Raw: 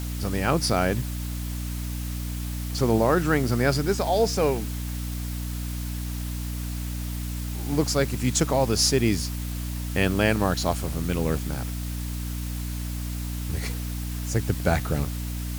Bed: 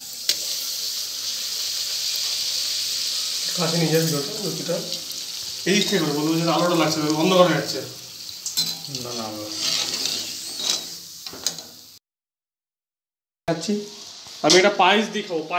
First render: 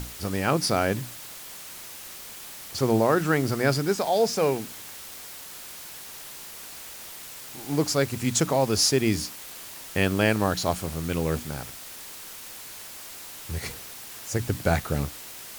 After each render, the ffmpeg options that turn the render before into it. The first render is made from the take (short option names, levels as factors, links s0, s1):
-af "bandreject=f=60:t=h:w=6,bandreject=f=120:t=h:w=6,bandreject=f=180:t=h:w=6,bandreject=f=240:t=h:w=6,bandreject=f=300:t=h:w=6"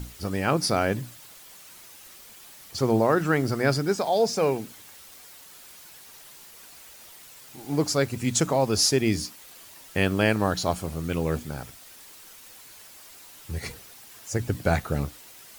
-af "afftdn=nr=8:nf=-42"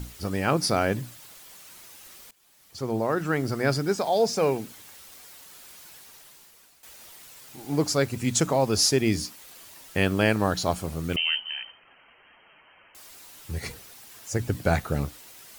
-filter_complex "[0:a]asettb=1/sr,asplit=3[s0][s1][s2];[s0]atrim=end=11.164[s3];[s1]atrim=start=11.16:end=12.95,asetpts=PTS-STARTPTS,afade=t=in:d=0.004:c=qsin,afade=t=out:st=1.786:d=0.004:c=qsin,lowpass=f=2700:t=q:w=0.5098,lowpass=f=2700:t=q:w=0.6013,lowpass=f=2700:t=q:w=0.9,lowpass=f=2700:t=q:w=2.563,afreqshift=-3200[s4];[s2]atrim=start=12.946[s5];[s3][s4]acrossfade=d=0.004:c1=hsin:c2=qsin[s6];[s6][s5]acrossfade=d=0.004:c1=qsin:c2=hsin,asplit=3[s7][s8][s9];[s7]atrim=end=2.31,asetpts=PTS-STARTPTS,afade=t=out:st=2.306:d=0.004:c=hsin:silence=0.1[s10];[s8]atrim=start=2.31:end=6.83,asetpts=PTS-STARTPTS,afade=t=in:d=2.13:c=qsin:silence=0.1,afade=t=out:st=3.62:d=0.9:silence=0.211349[s11];[s9]atrim=start=6.83,asetpts=PTS-STARTPTS,afade=t=in:d=0.004:c=hsin:silence=0.211349[s12];[s10][s11][s12]concat=n=3:v=0:a=1"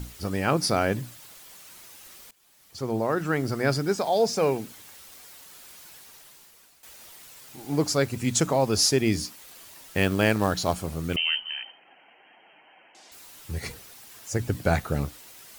-filter_complex "[0:a]asettb=1/sr,asplit=3[s0][s1][s2];[s0]atrim=end=9.484[s3];[s1]atrim=start=9.48:end=10.74,asetpts=PTS-STARTPTS,afade=t=in:d=0.004:c=qsin,afade=t=out:st=1.256:d=0.004:c=qsin,acrusher=bits=5:mode=log:mix=0:aa=0.000001[s4];[s2]atrim=start=10.736[s5];[s3][s4]acrossfade=d=0.004:c1=hsin:c2=qsin[s6];[s6][s5]acrossfade=d=0.004:c1=qsin:c2=hsin,asettb=1/sr,asplit=3[s7][s8][s9];[s7]atrim=end=11.624[s10];[s8]atrim=start=11.62:end=13.12,asetpts=PTS-STARTPTS,afade=t=in:d=0.004:c=qsin,afade=t=out:st=1.496:d=0.004:c=qsin,highpass=f=160:w=0.5412,highpass=f=160:w=1.3066,equalizer=f=320:t=q:w=4:g=5,equalizer=f=770:t=q:w=4:g=9,equalizer=f=1200:t=q:w=4:g=-8,lowpass=f=7100:w=0.5412,lowpass=f=7100:w=1.3066[s11];[s9]atrim=start=13.116[s12];[s10][s11]acrossfade=d=0.004:c1=hsin:c2=qsin[s13];[s13][s12]acrossfade=d=0.004:c1=qsin:c2=hsin"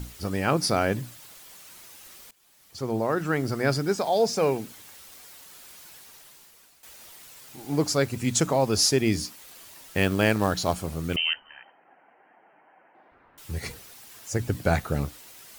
-filter_complex "[0:a]asettb=1/sr,asplit=3[s0][s1][s2];[s0]atrim=end=11.334[s3];[s1]atrim=start=11.33:end=13.38,asetpts=PTS-STARTPTS,afade=t=in:d=0.004:c=qsin,afade=t=out:st=2.046:d=0.004:c=qsin,lowpass=f=1700:w=0.5412,lowpass=f=1700:w=1.3066[s4];[s2]atrim=start=13.376[s5];[s3][s4]acrossfade=d=0.004:c1=hsin:c2=qsin[s6];[s6][s5]acrossfade=d=0.004:c1=qsin:c2=hsin"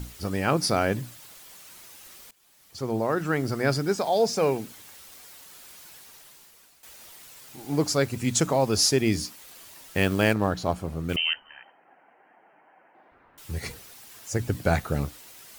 -filter_complex "[0:a]asettb=1/sr,asplit=3[s0][s1][s2];[s0]atrim=end=10.334[s3];[s1]atrim=start=10.33:end=11.09,asetpts=PTS-STARTPTS,afade=t=in:d=0.004:c=qsin,afade=t=out:st=0.756:d=0.004:c=qsin,highshelf=f=2700:g=-11.5[s4];[s2]atrim=start=11.086[s5];[s3][s4]acrossfade=d=0.004:c1=hsin:c2=qsin[s6];[s6][s5]acrossfade=d=0.004:c1=qsin:c2=hsin"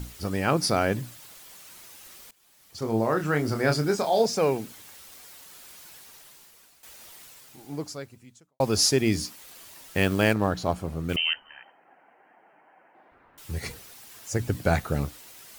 -filter_complex "[0:a]asettb=1/sr,asplit=3[s0][s1][s2];[s0]atrim=end=2.794[s3];[s1]atrim=start=2.79:end=4.26,asetpts=PTS-STARTPTS,afade=t=in:d=0.004:c=qsin,afade=t=out:st=1.466:d=0.004:c=qsin,asplit=2[s4][s5];[s5]adelay=27,volume=0.501[s6];[s4][s6]amix=inputs=2:normalize=0,atrim=end_sample=64827[s7];[s2]atrim=start=4.256[s8];[s3][s7]acrossfade=d=0.004:c1=hsin:c2=qsin[s9];[s9][s8]acrossfade=d=0.004:c1=qsin:c2=hsin,asplit=2[s10][s11];[s10]atrim=end=8.6,asetpts=PTS-STARTPTS,afade=t=out:st=7.22:d=1.38:c=qua[s12];[s11]atrim=start=8.6,asetpts=PTS-STARTPTS,afade=t=in:d=0.004:c=hsin[s13];[s12][s13]concat=n=2:v=0:a=1"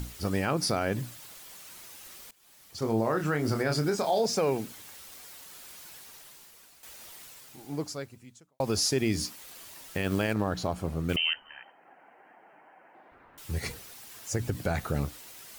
-af "alimiter=limit=0.133:level=0:latency=1:release=95,acompressor=mode=upward:threshold=0.00282:ratio=2.5"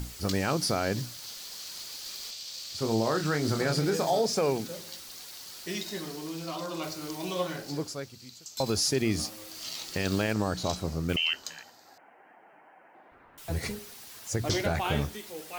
-filter_complex "[1:a]volume=0.158[s0];[0:a][s0]amix=inputs=2:normalize=0"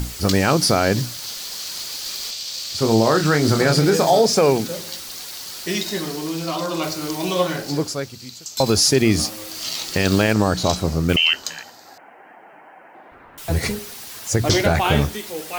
-af "volume=3.55"